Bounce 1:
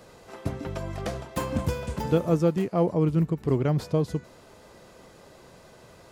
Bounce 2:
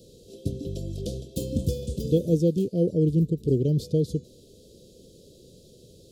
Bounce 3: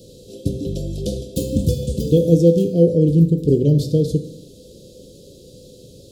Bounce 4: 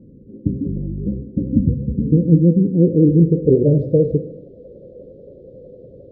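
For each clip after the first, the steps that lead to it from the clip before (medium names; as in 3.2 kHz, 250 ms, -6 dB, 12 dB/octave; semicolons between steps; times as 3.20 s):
elliptic band-stop 480–3500 Hz, stop band 40 dB; trim +2 dB
reverberation RT60 0.80 s, pre-delay 3 ms, DRR 6.5 dB; trim +7 dB
vibrato 11 Hz 69 cents; low-pass sweep 250 Hz -> 590 Hz, 2.68–3.56 s; trim -1 dB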